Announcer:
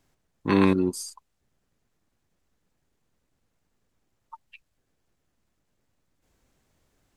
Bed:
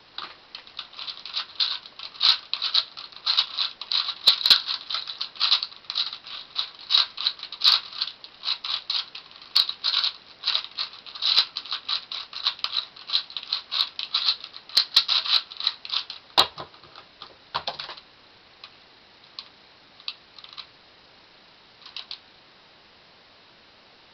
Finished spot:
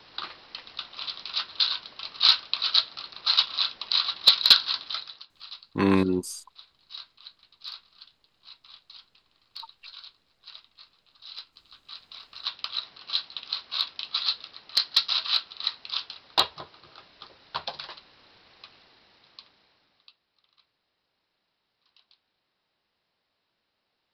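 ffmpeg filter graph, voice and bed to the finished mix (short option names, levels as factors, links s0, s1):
-filter_complex "[0:a]adelay=5300,volume=0.841[s0];[1:a]volume=7.94,afade=t=out:st=4.74:d=0.53:silence=0.0794328,afade=t=in:st=11.78:d=1.11:silence=0.125893,afade=t=out:st=18.61:d=1.56:silence=0.0891251[s1];[s0][s1]amix=inputs=2:normalize=0"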